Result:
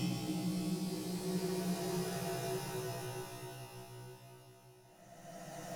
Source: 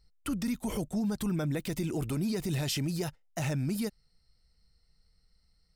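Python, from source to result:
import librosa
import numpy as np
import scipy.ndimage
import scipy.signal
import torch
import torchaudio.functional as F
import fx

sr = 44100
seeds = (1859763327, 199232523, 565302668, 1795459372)

y = fx.tube_stage(x, sr, drive_db=34.0, bias=0.4)
y = fx.comb_fb(y, sr, f0_hz=62.0, decay_s=0.44, harmonics='all', damping=0.0, mix_pct=100)
y = fx.paulstretch(y, sr, seeds[0], factor=12.0, window_s=0.25, from_s=2.87)
y = y * librosa.db_to_amplitude(10.5)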